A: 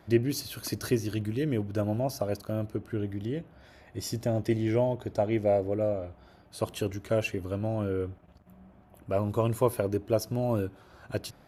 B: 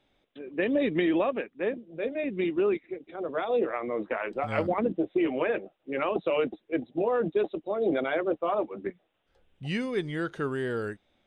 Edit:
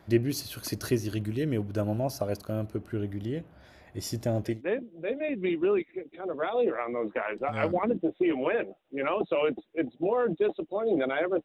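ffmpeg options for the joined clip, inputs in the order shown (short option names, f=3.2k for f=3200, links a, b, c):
-filter_complex "[0:a]apad=whole_dur=11.44,atrim=end=11.44,atrim=end=4.62,asetpts=PTS-STARTPTS[a];[1:a]atrim=start=1.39:end=8.39,asetpts=PTS-STARTPTS[b];[a][b]acrossfade=d=0.18:c1=tri:c2=tri"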